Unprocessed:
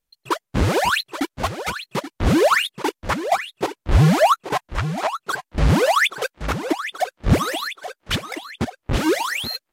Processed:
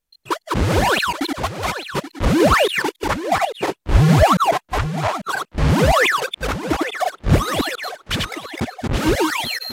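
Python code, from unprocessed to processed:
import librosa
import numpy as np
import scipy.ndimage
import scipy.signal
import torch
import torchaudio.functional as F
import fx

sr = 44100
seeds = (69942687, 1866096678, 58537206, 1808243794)

y = fx.reverse_delay(x, sr, ms=141, wet_db=-1.5)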